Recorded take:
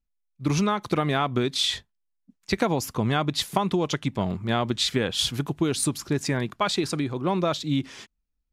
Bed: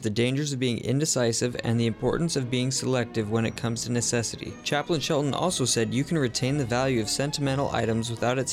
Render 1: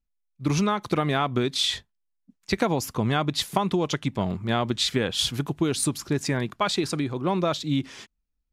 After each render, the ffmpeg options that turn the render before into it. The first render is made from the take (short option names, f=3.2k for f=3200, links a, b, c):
-af anull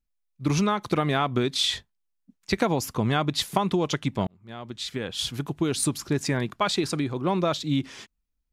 -filter_complex "[0:a]asplit=2[a][b];[a]atrim=end=4.27,asetpts=PTS-STARTPTS,afade=t=out:st=4.266:d=0.004:c=hsin[c];[b]atrim=start=4.27,asetpts=PTS-STARTPTS,afade=t=in:d=1.58[d];[c][d]concat=n=2:v=0:a=1"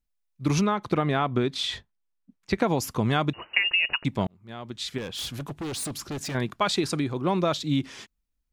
-filter_complex "[0:a]asettb=1/sr,asplit=3[a][b][c];[a]atrim=end=0.614[d];[b]atrim=start=0.61:end=2.67,asetpts=PTS-STARTPTS,afade=t=in:d=0.004:c=qsin,afade=t=out:st=2.056:d=0.004:c=qsin,highshelf=f=4.2k:g=-11.5[e];[c]atrim=start=2.666[f];[d][e]acrossfade=d=0.004:c1=hsin:c2=qsin[g];[g][f]acrossfade=d=0.004:c1=qsin:c2=hsin,asettb=1/sr,asplit=3[h][i][j];[h]atrim=end=3.334[k];[i]atrim=start=3.33:end=4.05,asetpts=PTS-STARTPTS,afade=t=in:d=0.004:c=qsin,afade=t=out:st=0.716:d=0.004:c=qsin,lowpass=f=2.6k:t=q:w=0.5098,lowpass=f=2.6k:t=q:w=0.6013,lowpass=f=2.6k:t=q:w=0.9,lowpass=f=2.6k:t=q:w=2.563,afreqshift=-3000[l];[j]atrim=start=4.046[m];[k][l]acrossfade=d=0.004:c1=hsin:c2=qsin[n];[n][m]acrossfade=d=0.004:c1=qsin:c2=hsin,asettb=1/sr,asplit=3[o][p][q];[o]atrim=end=4.984[r];[p]atrim=start=4.98:end=6.35,asetpts=PTS-STARTPTS,afade=t=in:d=0.004:c=qsin,afade=t=out:st=1.366:d=0.004:c=qsin,volume=30dB,asoftclip=hard,volume=-30dB[s];[q]atrim=start=6.346[t];[r][s]acrossfade=d=0.004:c1=hsin:c2=qsin[u];[u][t]acrossfade=d=0.004:c1=qsin:c2=hsin"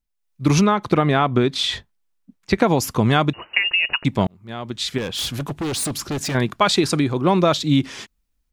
-af "dynaudnorm=f=170:g=3:m=8dB"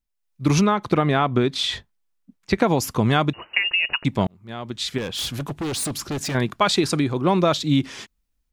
-af "volume=-2dB"